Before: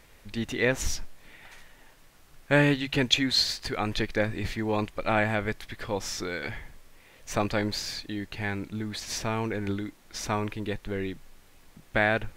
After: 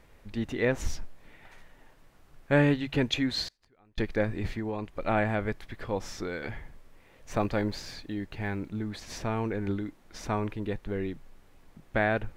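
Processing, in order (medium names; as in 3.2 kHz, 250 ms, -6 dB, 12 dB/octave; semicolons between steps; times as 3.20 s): 7.34–8.71 s: block-companded coder 7-bit; treble shelf 2 kHz -10.5 dB; 3.48–3.98 s: inverted gate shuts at -33 dBFS, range -32 dB; 4.57–5.00 s: compression, threshold -30 dBFS, peak gain reduction 7 dB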